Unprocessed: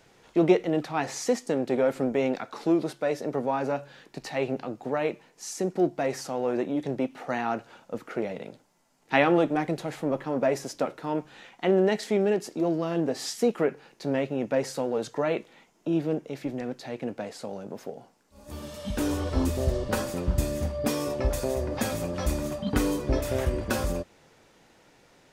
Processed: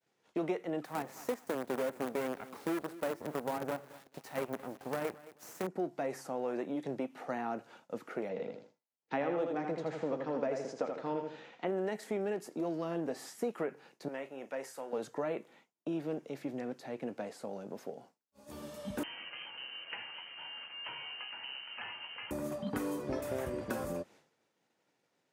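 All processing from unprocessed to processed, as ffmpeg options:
-filter_complex "[0:a]asettb=1/sr,asplit=3[s0][s1][s2];[s0]atrim=end=0.854[s3];[s1]atrim=start=0.85:end=5.67,asetpts=PTS-STARTPTS,afade=t=in:d=0.004:c=qsin,afade=t=out:st=4.816:d=0.004:c=qsin,acrusher=bits=5:dc=4:mix=0:aa=0.000001,aecho=1:1:218|436|654:0.0841|0.0303|0.0109,atrim=end_sample=212562[s4];[s2]atrim=start=5.666[s5];[s3][s4]acrossfade=d=0.004:c1=hsin:c2=qsin[s6];[s6][s5]acrossfade=d=0.004:c1=qsin:c2=hsin,asettb=1/sr,asplit=3[s7][s8][s9];[s7]atrim=end=8.294[s10];[s8]atrim=start=8.29:end=11.67,asetpts=PTS-STARTPTS,afade=t=in:d=0.004:c=qsin,afade=t=out:st=3.376:d=0.004:c=qsin,lowpass=f=6400:w=0.5412,lowpass=f=6400:w=1.3066,equalizer=f=480:w=7:g=7.5,aecho=1:1:80|160|240|320:0.501|0.15|0.0451|0.0135,atrim=end_sample=149058[s11];[s9]atrim=start=11.666[s12];[s10][s11]acrossfade=d=0.004:c1=hsin:c2=qsin[s13];[s13][s12]acrossfade=d=0.004:c1=qsin:c2=hsin,asettb=1/sr,asplit=3[s14][s15][s16];[s14]atrim=end=14.084[s17];[s15]atrim=start=14.08:end=14.93,asetpts=PTS-STARTPTS,afade=t=in:d=0.004:c=qsin,afade=t=out:st=0.846:d=0.004:c=qsin,highpass=f=1300:p=1,equalizer=f=4200:t=o:w=0.44:g=-4.5,asplit=2[s18][s19];[s19]adelay=37,volume=0.237[s20];[s18][s20]amix=inputs=2:normalize=0,atrim=end_sample=37485[s21];[s16]atrim=start=14.926[s22];[s17][s21]acrossfade=d=0.004:c1=hsin:c2=qsin[s23];[s23][s22]acrossfade=d=0.004:c1=qsin:c2=hsin,asettb=1/sr,asplit=3[s24][s25][s26];[s24]atrim=end=19.034[s27];[s25]atrim=start=19.03:end=22.31,asetpts=PTS-STARTPTS,afade=t=in:d=0.004:c=qsin,afade=t=out:st=3.276:d=0.004:c=qsin,aeval=exprs='val(0)+0.5*0.0158*sgn(val(0))':c=same,highpass=f=350:w=0.5412,highpass=f=350:w=1.3066,lowpass=f=2900:t=q:w=0.5098,lowpass=f=2900:t=q:w=0.6013,lowpass=f=2900:t=q:w=0.9,lowpass=f=2900:t=q:w=2.563,afreqshift=-3400[s28];[s26]atrim=start=22.306[s29];[s27][s28]acrossfade=d=0.004:c1=hsin:c2=qsin[s30];[s30][s29]acrossfade=d=0.004:c1=qsin:c2=hsin,agate=range=0.0224:threshold=0.00398:ratio=3:detection=peak,highpass=150,acrossover=split=750|2100|8000[s31][s32][s33][s34];[s31]acompressor=threshold=0.0355:ratio=4[s35];[s32]acompressor=threshold=0.0158:ratio=4[s36];[s33]acompressor=threshold=0.00178:ratio=4[s37];[s34]acompressor=threshold=0.00501:ratio=4[s38];[s35][s36][s37][s38]amix=inputs=4:normalize=0,volume=0.562"

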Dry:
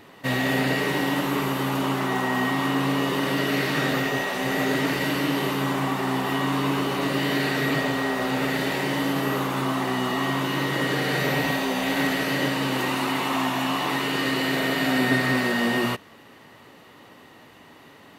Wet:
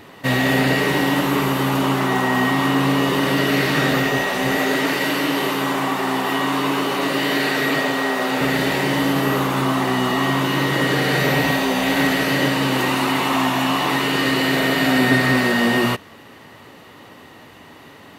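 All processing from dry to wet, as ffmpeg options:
-filter_complex "[0:a]asettb=1/sr,asplit=3[s0][s1][s2];[s0]atrim=end=4.564[s3];[s1]atrim=start=4.56:end=8.41,asetpts=PTS-STARTPTS,afade=t=in:d=0.004:c=qsin,afade=t=out:st=3.846:d=0.004:c=qsin,highpass=170,lowshelf=f=220:g=-6[s4];[s2]atrim=start=8.406[s5];[s3][s4]acrossfade=d=0.004:c1=hsin:c2=qsin[s6];[s6][s5]acrossfade=d=0.004:c1=qsin:c2=hsin,equalizer=f=82:t=o:w=0.77:g=4,acontrast=45"

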